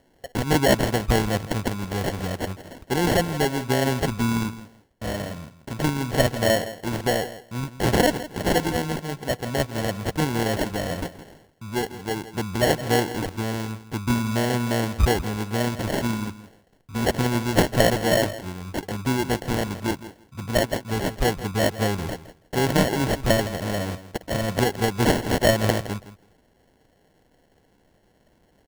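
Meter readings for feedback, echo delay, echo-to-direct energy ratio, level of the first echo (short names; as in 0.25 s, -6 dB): 16%, 0.164 s, -14.5 dB, -14.5 dB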